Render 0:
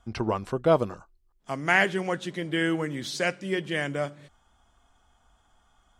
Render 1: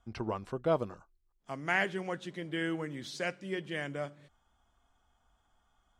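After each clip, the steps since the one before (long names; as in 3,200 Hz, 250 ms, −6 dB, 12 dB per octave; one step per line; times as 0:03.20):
high-shelf EQ 6,500 Hz −4.5 dB
level −8 dB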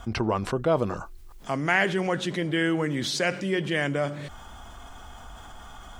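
envelope flattener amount 50%
level +5 dB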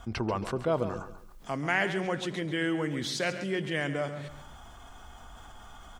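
repeating echo 137 ms, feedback 34%, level −12 dB
level −5 dB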